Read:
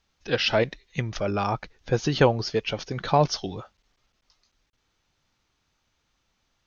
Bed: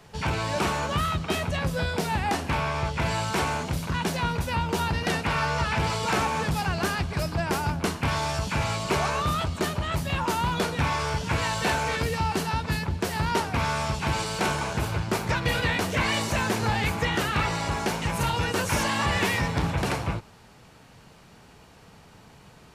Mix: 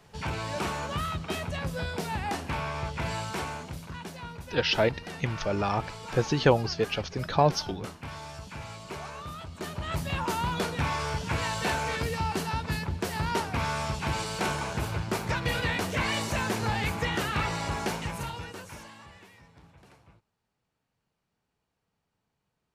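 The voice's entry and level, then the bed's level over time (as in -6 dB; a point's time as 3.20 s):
4.25 s, -2.0 dB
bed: 3.16 s -5.5 dB
4.16 s -14 dB
9.44 s -14 dB
9.94 s -3.5 dB
17.93 s -3.5 dB
19.29 s -29.5 dB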